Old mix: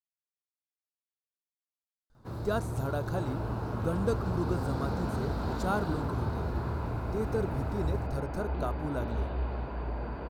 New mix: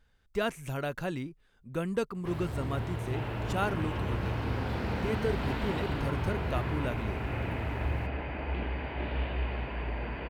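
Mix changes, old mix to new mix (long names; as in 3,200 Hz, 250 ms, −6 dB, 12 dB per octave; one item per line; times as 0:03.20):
speech: entry −2.10 s
master: add flat-topped bell 2,400 Hz +13.5 dB 1.1 octaves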